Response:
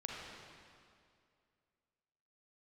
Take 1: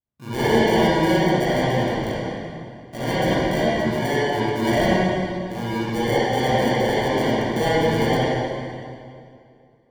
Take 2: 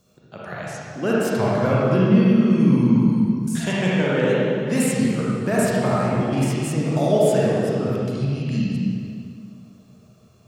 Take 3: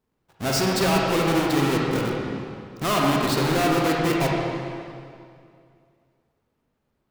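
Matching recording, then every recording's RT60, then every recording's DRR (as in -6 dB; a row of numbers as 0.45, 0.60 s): 3; 2.3, 2.3, 2.3 s; -13.0, -7.0, -2.5 dB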